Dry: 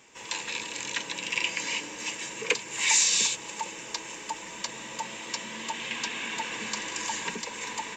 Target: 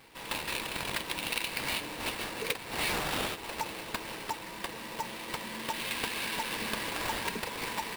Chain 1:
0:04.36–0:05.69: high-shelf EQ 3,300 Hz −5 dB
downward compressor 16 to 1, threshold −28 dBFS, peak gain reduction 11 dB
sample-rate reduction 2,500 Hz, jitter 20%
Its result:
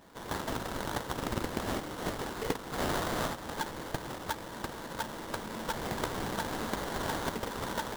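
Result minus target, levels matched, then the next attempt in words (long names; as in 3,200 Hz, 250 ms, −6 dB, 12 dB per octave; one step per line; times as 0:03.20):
sample-rate reduction: distortion +11 dB
0:04.36–0:05.69: high-shelf EQ 3,300 Hz −5 dB
downward compressor 16 to 1, threshold −28 dBFS, peak gain reduction 11 dB
sample-rate reduction 6,600 Hz, jitter 20%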